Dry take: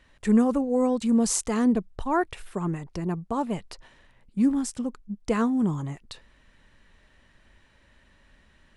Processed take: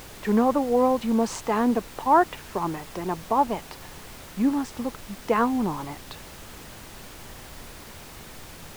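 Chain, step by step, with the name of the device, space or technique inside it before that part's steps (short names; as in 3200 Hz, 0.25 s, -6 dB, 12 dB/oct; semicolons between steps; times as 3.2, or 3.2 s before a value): horn gramophone (BPF 280–3600 Hz; bell 880 Hz +8 dB 0.77 oct; wow and flutter; pink noise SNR 16 dB); gain +2.5 dB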